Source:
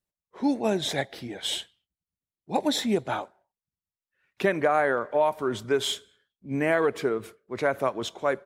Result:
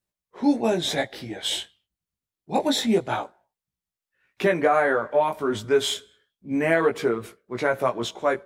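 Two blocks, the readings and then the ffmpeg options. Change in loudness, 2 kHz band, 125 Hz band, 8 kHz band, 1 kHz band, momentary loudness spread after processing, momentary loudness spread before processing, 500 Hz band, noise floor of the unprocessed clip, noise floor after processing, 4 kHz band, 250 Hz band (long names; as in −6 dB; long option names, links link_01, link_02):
+3.0 dB, +3.0 dB, +2.0 dB, +3.0 dB, +2.5 dB, 10 LU, 10 LU, +3.0 dB, below −85 dBFS, below −85 dBFS, +3.0 dB, +3.5 dB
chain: -af "flanger=delay=16.5:depth=2.7:speed=0.26,volume=6dB"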